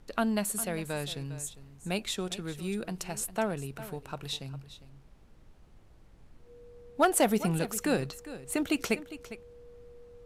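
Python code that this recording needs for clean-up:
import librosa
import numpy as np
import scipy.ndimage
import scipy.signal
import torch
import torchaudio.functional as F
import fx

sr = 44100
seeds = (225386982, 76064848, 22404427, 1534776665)

y = fx.fix_declip(x, sr, threshold_db=-15.0)
y = fx.notch(y, sr, hz=480.0, q=30.0)
y = fx.noise_reduce(y, sr, print_start_s=5.07, print_end_s=5.57, reduce_db=23.0)
y = fx.fix_echo_inverse(y, sr, delay_ms=404, level_db=-15.0)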